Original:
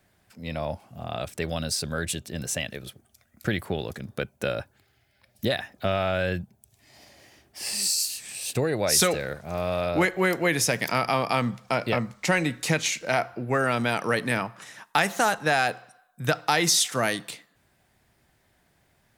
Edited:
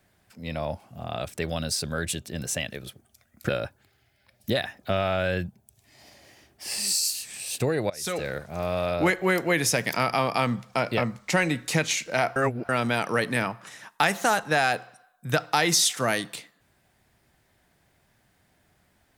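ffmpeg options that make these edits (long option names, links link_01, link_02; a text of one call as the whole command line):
ffmpeg -i in.wav -filter_complex "[0:a]asplit=5[link_01][link_02][link_03][link_04][link_05];[link_01]atrim=end=3.492[link_06];[link_02]atrim=start=4.438:end=8.85,asetpts=PTS-STARTPTS,afade=type=out:start_time=4.408:duration=0.004:curve=hsin:silence=0.1[link_07];[link_03]atrim=start=8.85:end=13.312,asetpts=PTS-STARTPTS,afade=type=in:duration=0.36:curve=qua:silence=0.1[link_08];[link_04]atrim=start=13.308:end=13.642,asetpts=PTS-STARTPTS,areverse[link_09];[link_05]atrim=start=13.638[link_10];[link_07][link_08]concat=n=2:v=0:a=1[link_11];[link_06][link_11]acrossfade=duration=0.004:curve1=hsin:curve2=hsin[link_12];[link_12][link_09]acrossfade=duration=0.004:curve1=hsin:curve2=hsin[link_13];[link_13][link_10]acrossfade=duration=0.004:curve1=hsin:curve2=hsin" out.wav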